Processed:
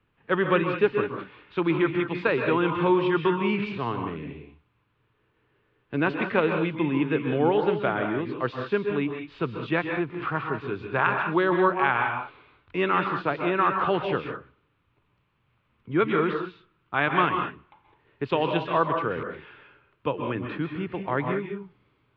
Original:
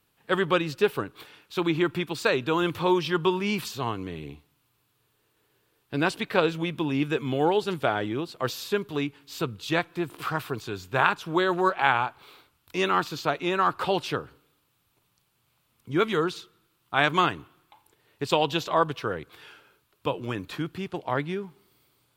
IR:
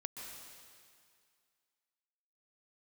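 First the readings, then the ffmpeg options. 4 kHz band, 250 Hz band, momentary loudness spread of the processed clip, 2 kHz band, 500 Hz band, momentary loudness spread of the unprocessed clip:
-6.5 dB, +2.5 dB, 12 LU, +1.0 dB, +1.5 dB, 11 LU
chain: -filter_complex "[0:a]asplit=2[a][b];[b]alimiter=limit=-11.5dB:level=0:latency=1:release=226,volume=-2dB[c];[a][c]amix=inputs=2:normalize=0,lowpass=f=2.7k:w=0.5412,lowpass=f=2.7k:w=1.3066,lowshelf=f=110:g=6.5,acrossover=split=130[d][e];[d]acompressor=threshold=-46dB:ratio=6[f];[f][e]amix=inputs=2:normalize=0,equalizer=f=730:t=o:w=0.41:g=-4[g];[1:a]atrim=start_sample=2205,afade=t=out:st=0.26:d=0.01,atrim=end_sample=11907[h];[g][h]afir=irnorm=-1:irlink=0"

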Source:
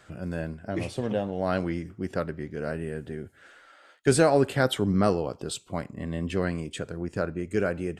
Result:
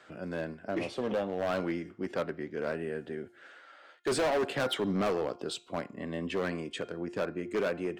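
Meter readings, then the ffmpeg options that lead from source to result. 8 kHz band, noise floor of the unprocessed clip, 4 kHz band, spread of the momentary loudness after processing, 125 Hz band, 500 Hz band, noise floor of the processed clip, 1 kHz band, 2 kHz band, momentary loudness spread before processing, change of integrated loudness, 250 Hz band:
-8.5 dB, -56 dBFS, -2.0 dB, 9 LU, -11.5 dB, -4.5 dB, -58 dBFS, -4.5 dB, -3.5 dB, 13 LU, -5.5 dB, -6.0 dB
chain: -filter_complex "[0:a]acrossover=split=210 5500:gain=0.141 1 0.251[a][b][c];[a][b][c]amix=inputs=3:normalize=0,bandreject=f=352.7:t=h:w=4,bandreject=f=705.4:t=h:w=4,bandreject=f=1.0581k:t=h:w=4,bandreject=f=1.4108k:t=h:w=4,bandreject=f=1.7635k:t=h:w=4,bandreject=f=2.1162k:t=h:w=4,bandreject=f=2.4689k:t=h:w=4,bandreject=f=2.8216k:t=h:w=4,bandreject=f=3.1743k:t=h:w=4,bandreject=f=3.527k:t=h:w=4,bandreject=f=3.8797k:t=h:w=4,asoftclip=type=hard:threshold=-25.5dB"

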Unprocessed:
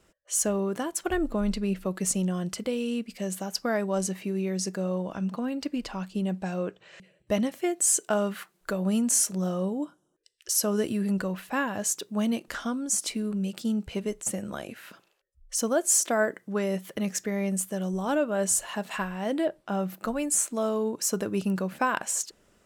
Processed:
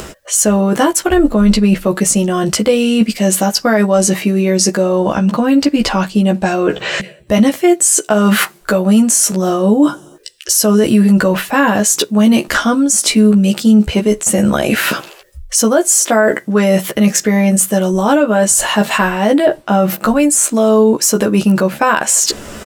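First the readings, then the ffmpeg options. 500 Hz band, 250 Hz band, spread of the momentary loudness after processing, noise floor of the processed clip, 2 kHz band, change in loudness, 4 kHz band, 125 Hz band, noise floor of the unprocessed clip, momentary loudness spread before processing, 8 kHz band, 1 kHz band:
+16.0 dB, +17.5 dB, 4 LU, -40 dBFS, +17.0 dB, +16.0 dB, +18.0 dB, +16.0 dB, -68 dBFS, 9 LU, +14.0 dB, +16.5 dB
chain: -filter_complex "[0:a]areverse,acompressor=threshold=-44dB:ratio=4,areverse,asplit=2[a][b];[b]adelay=14,volume=-3.5dB[c];[a][c]amix=inputs=2:normalize=0,acompressor=mode=upward:threshold=-56dB:ratio=2.5,alimiter=level_in=32.5dB:limit=-1dB:release=50:level=0:latency=1,volume=-1dB"

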